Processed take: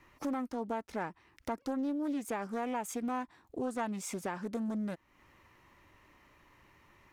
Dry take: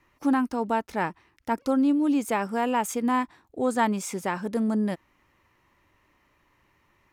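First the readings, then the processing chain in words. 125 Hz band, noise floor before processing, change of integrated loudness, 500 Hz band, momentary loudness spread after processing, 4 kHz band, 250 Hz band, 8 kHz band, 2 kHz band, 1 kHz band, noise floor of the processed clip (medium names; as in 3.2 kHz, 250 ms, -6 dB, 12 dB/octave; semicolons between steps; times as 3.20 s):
-9.5 dB, -67 dBFS, -11.0 dB, -9.5 dB, 6 LU, -11.0 dB, -11.0 dB, -8.0 dB, -11.5 dB, -11.5 dB, -70 dBFS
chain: compression 2.5:1, threshold -43 dBFS, peak gain reduction 16.5 dB; loudspeaker Doppler distortion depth 0.31 ms; trim +3 dB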